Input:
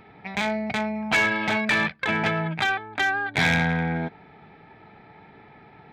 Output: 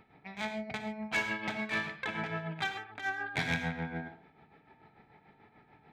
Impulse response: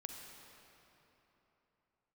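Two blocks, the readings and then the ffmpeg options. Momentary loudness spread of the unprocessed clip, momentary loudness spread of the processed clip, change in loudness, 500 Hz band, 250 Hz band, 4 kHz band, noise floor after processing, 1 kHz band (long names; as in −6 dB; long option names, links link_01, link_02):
7 LU, 8 LU, −11.5 dB, −11.5 dB, −11.5 dB, −11.0 dB, −65 dBFS, −12.0 dB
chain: -filter_complex "[0:a]tremolo=f=6.8:d=0.79[link_01];[1:a]atrim=start_sample=2205,atrim=end_sample=6615[link_02];[link_01][link_02]afir=irnorm=-1:irlink=0,volume=-4dB"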